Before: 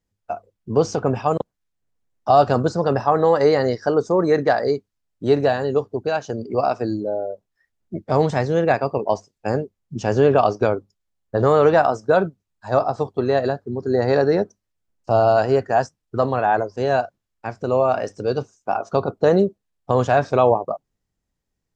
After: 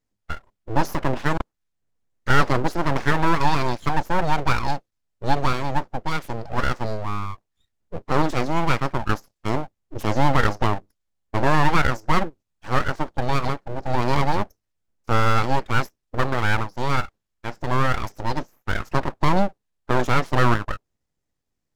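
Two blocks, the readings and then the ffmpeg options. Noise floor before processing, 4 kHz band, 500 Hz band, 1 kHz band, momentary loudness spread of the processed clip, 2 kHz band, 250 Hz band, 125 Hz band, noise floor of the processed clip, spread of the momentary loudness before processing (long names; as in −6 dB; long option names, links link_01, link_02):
−79 dBFS, +4.5 dB, −11.0 dB, −1.5 dB, 12 LU, +3.5 dB, −2.5 dB, +1.0 dB, −79 dBFS, 13 LU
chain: -af "aeval=exprs='abs(val(0))':channel_layout=same"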